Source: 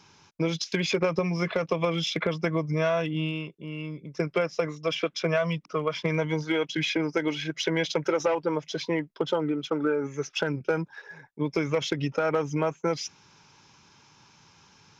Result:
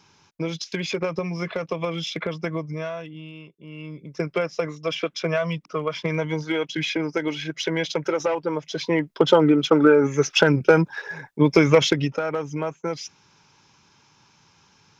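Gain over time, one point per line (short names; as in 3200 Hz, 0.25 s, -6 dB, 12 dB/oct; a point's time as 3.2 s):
2.55 s -1 dB
3.23 s -11 dB
4.03 s +1.5 dB
8.67 s +1.5 dB
9.29 s +11 dB
11.81 s +11 dB
12.26 s -1 dB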